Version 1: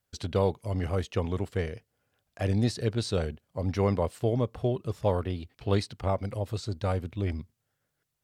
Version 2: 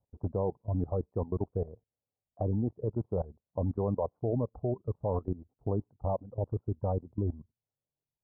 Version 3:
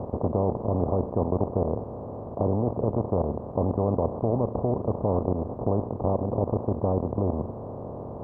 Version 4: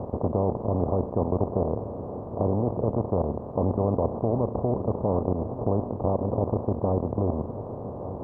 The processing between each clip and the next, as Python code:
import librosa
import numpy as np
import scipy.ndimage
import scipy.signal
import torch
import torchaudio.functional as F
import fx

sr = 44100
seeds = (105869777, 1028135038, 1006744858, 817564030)

y1 = fx.dereverb_blind(x, sr, rt60_s=1.8)
y1 = scipy.signal.sosfilt(scipy.signal.butter(8, 1000.0, 'lowpass', fs=sr, output='sos'), y1)
y1 = fx.level_steps(y1, sr, step_db=17)
y1 = F.gain(torch.from_numpy(y1), 5.0).numpy()
y2 = fx.bin_compress(y1, sr, power=0.2)
y3 = y2 + 10.0 ** (-13.5 / 20.0) * np.pad(y2, (int(1172 * sr / 1000.0), 0))[:len(y2)]